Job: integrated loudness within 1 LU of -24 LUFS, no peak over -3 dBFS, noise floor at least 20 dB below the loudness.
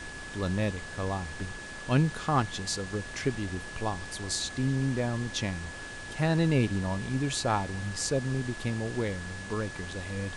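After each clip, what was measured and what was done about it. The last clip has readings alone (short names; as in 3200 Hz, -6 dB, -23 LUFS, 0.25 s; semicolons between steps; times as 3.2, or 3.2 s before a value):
steady tone 1700 Hz; tone level -42 dBFS; noise floor -41 dBFS; noise floor target -51 dBFS; loudness -31.0 LUFS; peak -13.0 dBFS; loudness target -24.0 LUFS
-> notch 1700 Hz, Q 30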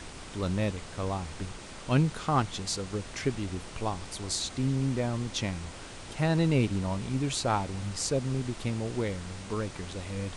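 steady tone none; noise floor -44 dBFS; noise floor target -51 dBFS
-> noise print and reduce 7 dB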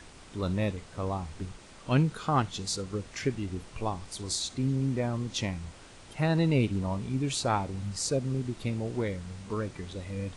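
noise floor -51 dBFS; loudness -31.0 LUFS; peak -12.5 dBFS; loudness target -24.0 LUFS
-> gain +7 dB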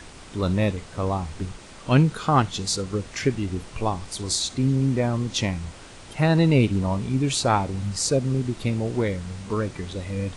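loudness -24.0 LUFS; peak -5.5 dBFS; noise floor -44 dBFS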